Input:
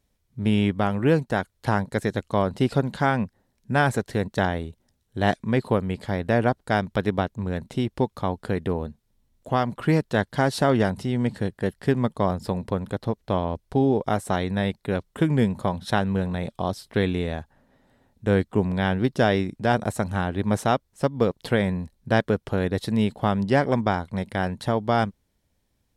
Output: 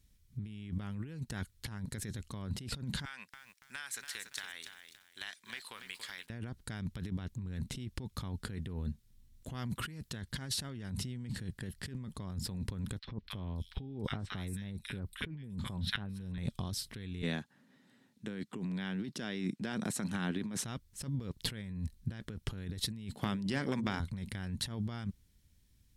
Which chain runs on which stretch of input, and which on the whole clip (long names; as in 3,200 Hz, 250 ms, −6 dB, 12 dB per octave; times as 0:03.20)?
0:03.05–0:06.30: high-pass filter 1,400 Hz + downward compressor, threshold −37 dBFS + feedback echo at a low word length 284 ms, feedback 35%, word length 10 bits, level −8 dB
0:09.54–0:10.10: high-pass filter 44 Hz + high-shelf EQ 8,100 Hz +7 dB
0:12.99–0:16.38: parametric band 6,700 Hz −7 dB 0.5 octaves + three-band delay without the direct sound mids, lows, highs 50/280 ms, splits 1,400/4,900 Hz
0:17.22–0:20.64: high-pass filter 180 Hz 24 dB per octave + high-shelf EQ 11,000 Hz −11 dB
0:23.11–0:24.00: high-pass filter 200 Hz + mains-hum notches 60/120/180/240/300/360/420/480/540 Hz + downward compressor 10 to 1, threshold −22 dBFS
whole clip: guitar amp tone stack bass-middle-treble 6-0-2; compressor whose output falls as the input rises −50 dBFS, ratio −1; level +11 dB